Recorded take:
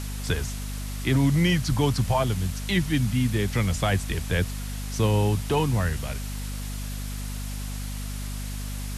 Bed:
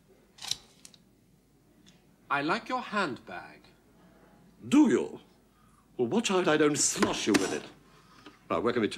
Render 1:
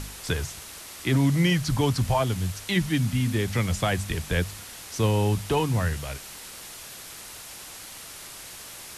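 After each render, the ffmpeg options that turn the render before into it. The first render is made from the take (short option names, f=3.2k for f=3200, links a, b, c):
-af "bandreject=f=50:t=h:w=4,bandreject=f=100:t=h:w=4,bandreject=f=150:t=h:w=4,bandreject=f=200:t=h:w=4,bandreject=f=250:t=h:w=4"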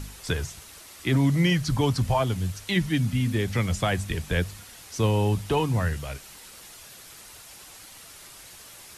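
-af "afftdn=nr=6:nf=-42"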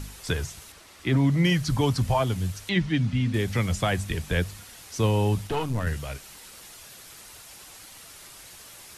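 -filter_complex "[0:a]asettb=1/sr,asplit=3[a][b][c];[a]atrim=end=0.724[d];[b]atrim=start=0.72:end=1.45,asetpts=PTS-STARTPTS,afade=t=in:d=0.004:c=qsin,afade=t=out:st=0.726:d=0.004:c=qsin,lowpass=f=3.7k:p=1[e];[c]atrim=start=1.446[f];[d][e]acrossfade=d=0.004:c1=hsin:c2=qsin[g];[g][f]acrossfade=d=0.004:c1=qsin:c2=hsin,asettb=1/sr,asplit=3[h][i][j];[h]atrim=end=2.694[k];[i]atrim=start=2.69:end=3.34,asetpts=PTS-STARTPTS,afade=t=in:d=0.004:c=qsin,afade=t=out:st=0.646:d=0.004:c=qsin,lowpass=4.7k[l];[j]atrim=start=3.336[m];[k][l]acrossfade=d=0.004:c1=hsin:c2=qsin[n];[n][m]acrossfade=d=0.004:c1=qsin:c2=hsin,asettb=1/sr,asplit=3[o][p][q];[o]atrim=end=5.474[r];[p]atrim=start=5.47:end=5.87,asetpts=PTS-STARTPTS,afade=t=in:d=0.004:c=qsin,afade=t=out:st=0.396:d=0.004:c=qsin,aeval=exprs='(tanh(10*val(0)+0.7)-tanh(0.7))/10':c=same[s];[q]atrim=start=5.866[t];[r][s]acrossfade=d=0.004:c1=hsin:c2=qsin[u];[u][t]acrossfade=d=0.004:c1=qsin:c2=hsin"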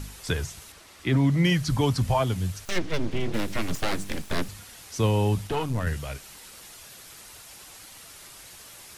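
-filter_complex "[0:a]asettb=1/sr,asplit=3[a][b][c];[a]atrim=end=2.654[d];[b]atrim=start=2.65:end=4.49,asetpts=PTS-STARTPTS,afade=t=in:d=0.004:c=qsin,afade=t=out:st=1.836:d=0.004:c=qsin,aeval=exprs='abs(val(0))':c=same[e];[c]atrim=start=4.486[f];[d][e]acrossfade=d=0.004:c1=hsin:c2=qsin[g];[g][f]acrossfade=d=0.004:c1=qsin:c2=hsin"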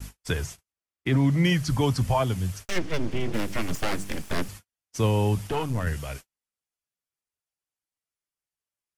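-af "agate=range=-48dB:threshold=-38dB:ratio=16:detection=peak,equalizer=f=3.9k:t=o:w=0.27:g=-5"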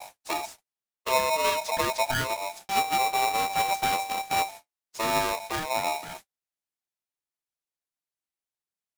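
-af "flanger=delay=4.6:depth=9.3:regen=45:speed=1.6:shape=triangular,aeval=exprs='val(0)*sgn(sin(2*PI*780*n/s))':c=same"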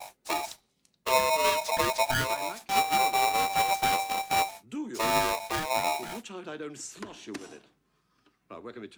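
-filter_complex "[1:a]volume=-14.5dB[a];[0:a][a]amix=inputs=2:normalize=0"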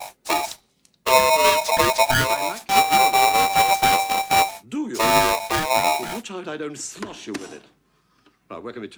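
-af "volume=8.5dB"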